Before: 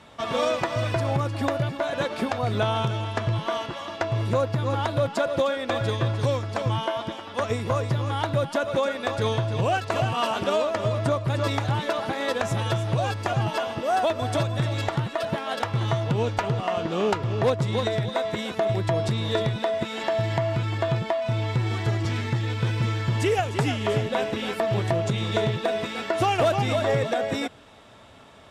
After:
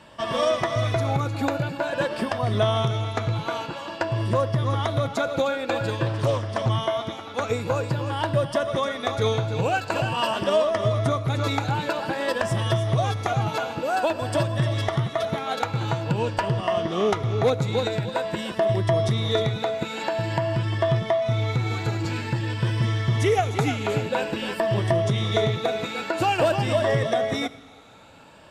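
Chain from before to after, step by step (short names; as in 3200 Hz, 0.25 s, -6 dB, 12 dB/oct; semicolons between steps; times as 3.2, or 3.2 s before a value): moving spectral ripple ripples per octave 1.3, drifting +0.49 Hz, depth 8 dB; on a send at -16.5 dB: high shelf 7900 Hz +11 dB + reverb, pre-delay 6 ms; 6.06–6.69 on the sum: Doppler distortion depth 0.44 ms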